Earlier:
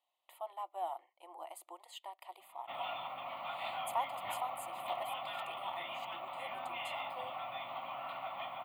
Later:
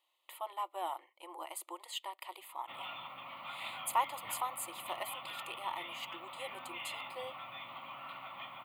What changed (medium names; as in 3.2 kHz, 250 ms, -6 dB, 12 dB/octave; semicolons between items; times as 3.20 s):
speech +9.5 dB; master: add peaking EQ 710 Hz -13.5 dB 0.51 oct